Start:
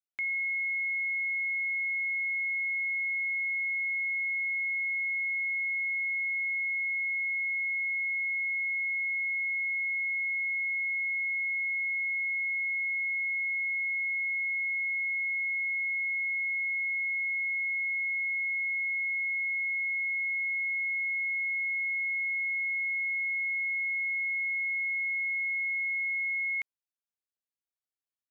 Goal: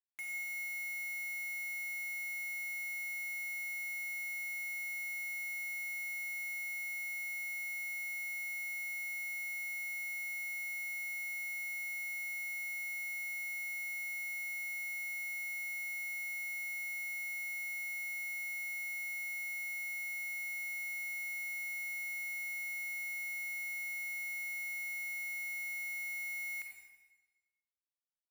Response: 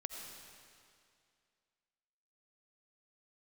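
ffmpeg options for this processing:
-filter_complex "[0:a]aecho=1:1:6.5:0.7,alimiter=level_in=6dB:limit=-24dB:level=0:latency=1,volume=-6dB,acrusher=bits=5:mix=0:aa=0.000001[link_01];[1:a]atrim=start_sample=2205,asetrate=83790,aresample=44100[link_02];[link_01][link_02]afir=irnorm=-1:irlink=0"

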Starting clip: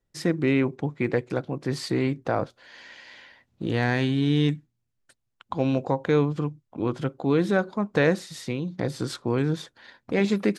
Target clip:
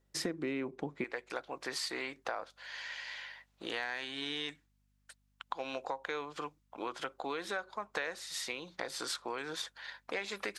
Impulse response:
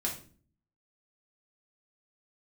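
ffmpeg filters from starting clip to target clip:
-af "asetnsamples=nb_out_samples=441:pad=0,asendcmd='1.04 highpass f 860',highpass=260,acompressor=threshold=-38dB:ratio=6,aeval=exprs='val(0)+0.000141*(sin(2*PI*50*n/s)+sin(2*PI*2*50*n/s)/2+sin(2*PI*3*50*n/s)/3+sin(2*PI*4*50*n/s)/4+sin(2*PI*5*50*n/s)/5)':channel_layout=same,volume=3.5dB"

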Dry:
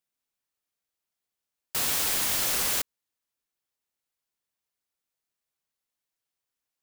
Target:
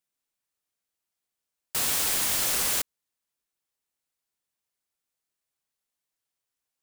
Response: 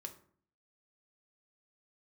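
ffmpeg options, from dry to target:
-af "equalizer=frequency=8800:width=1.5:gain=2.5"

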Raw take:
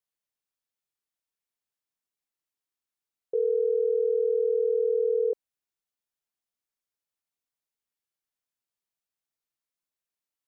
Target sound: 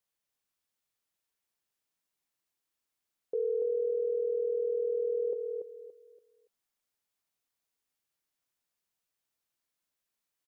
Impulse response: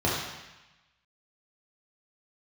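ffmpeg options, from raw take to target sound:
-af "alimiter=level_in=4dB:limit=-24dB:level=0:latency=1:release=67,volume=-4dB,aecho=1:1:285|570|855|1140:0.562|0.157|0.0441|0.0123,volume=3dB"

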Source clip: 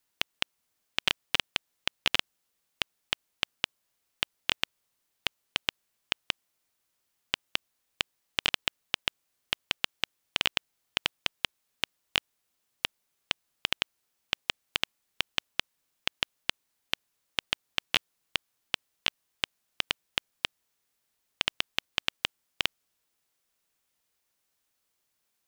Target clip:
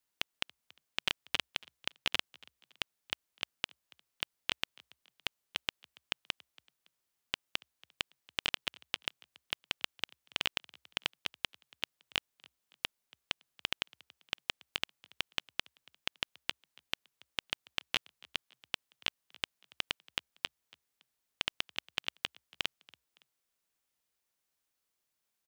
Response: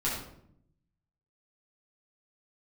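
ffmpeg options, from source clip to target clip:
-filter_complex "[0:a]asplit=3[link_01][link_02][link_03];[link_02]adelay=281,afreqshift=62,volume=-24dB[link_04];[link_03]adelay=562,afreqshift=124,volume=-32.4dB[link_05];[link_01][link_04][link_05]amix=inputs=3:normalize=0,volume=-6dB"

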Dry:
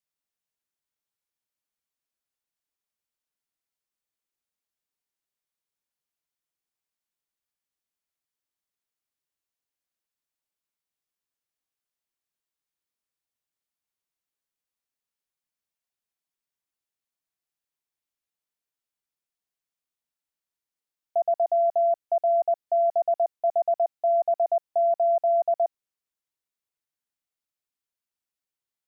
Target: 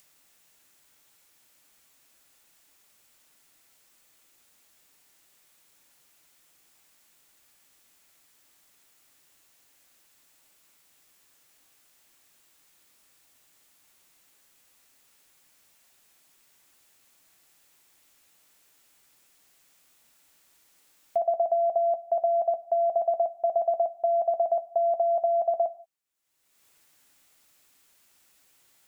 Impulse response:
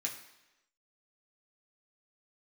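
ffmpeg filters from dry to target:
-filter_complex "[0:a]acompressor=mode=upward:threshold=-45dB:ratio=2.5,asplit=2[link_01][link_02];[1:a]atrim=start_sample=2205,afade=type=out:start_time=0.24:duration=0.01,atrim=end_sample=11025[link_03];[link_02][link_03]afir=irnorm=-1:irlink=0,volume=-8dB[link_04];[link_01][link_04]amix=inputs=2:normalize=0"

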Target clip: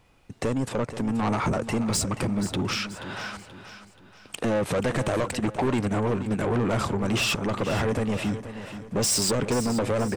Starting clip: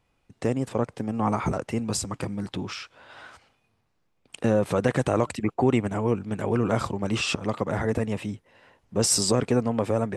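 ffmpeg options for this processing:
ffmpeg -i in.wav -filter_complex "[0:a]asplit=2[link_01][link_02];[link_02]acompressor=threshold=-33dB:ratio=6,volume=3dB[link_03];[link_01][link_03]amix=inputs=2:normalize=0,asoftclip=type=tanh:threshold=-23dB,aecho=1:1:480|960|1440|1920:0.251|0.103|0.0422|0.0173,volume=2.5dB" out.wav

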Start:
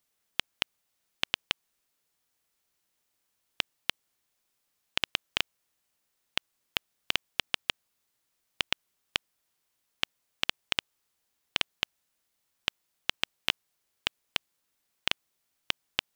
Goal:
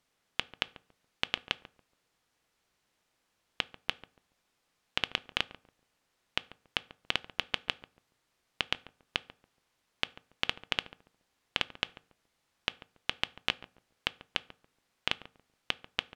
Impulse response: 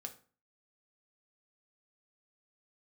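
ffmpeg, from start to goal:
-filter_complex "[0:a]alimiter=limit=-11.5dB:level=0:latency=1,aemphasis=mode=reproduction:type=50fm,asplit=2[link_01][link_02];[link_02]adelay=141,lowpass=frequency=830:poles=1,volume=-13dB,asplit=2[link_03][link_04];[link_04]adelay=141,lowpass=frequency=830:poles=1,volume=0.29,asplit=2[link_05][link_06];[link_06]adelay=141,lowpass=frequency=830:poles=1,volume=0.29[link_07];[link_01][link_03][link_05][link_07]amix=inputs=4:normalize=0,asplit=2[link_08][link_09];[1:a]atrim=start_sample=2205[link_10];[link_09][link_10]afir=irnorm=-1:irlink=0,volume=-5dB[link_11];[link_08][link_11]amix=inputs=2:normalize=0,volume=4.5dB"

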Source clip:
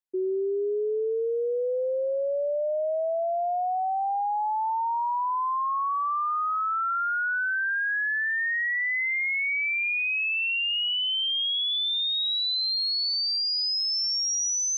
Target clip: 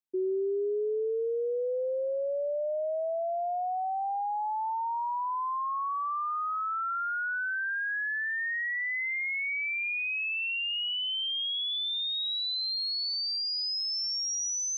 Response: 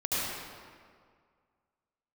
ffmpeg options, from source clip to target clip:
-af "equalizer=frequency=230:width=1:gain=6,volume=-5dB"

